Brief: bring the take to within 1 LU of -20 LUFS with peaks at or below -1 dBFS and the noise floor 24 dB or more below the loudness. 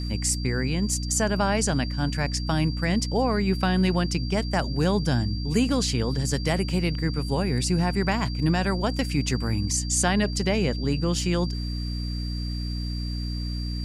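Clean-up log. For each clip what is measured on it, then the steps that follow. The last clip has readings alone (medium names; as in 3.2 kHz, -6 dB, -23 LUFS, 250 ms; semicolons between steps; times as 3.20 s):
hum 60 Hz; highest harmonic 300 Hz; hum level -27 dBFS; steady tone 4.7 kHz; tone level -38 dBFS; loudness -25.5 LUFS; peak level -9.0 dBFS; loudness target -20.0 LUFS
-> de-hum 60 Hz, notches 5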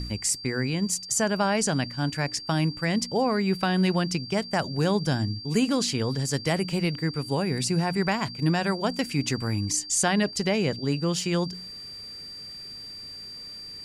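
hum not found; steady tone 4.7 kHz; tone level -38 dBFS
-> band-stop 4.7 kHz, Q 30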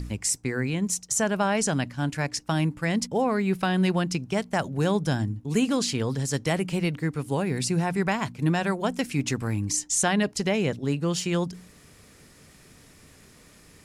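steady tone not found; loudness -26.0 LUFS; peak level -10.5 dBFS; loudness target -20.0 LUFS
-> trim +6 dB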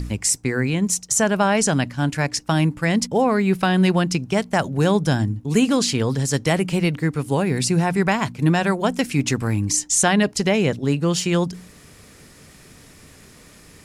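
loudness -20.0 LUFS; peak level -4.5 dBFS; noise floor -48 dBFS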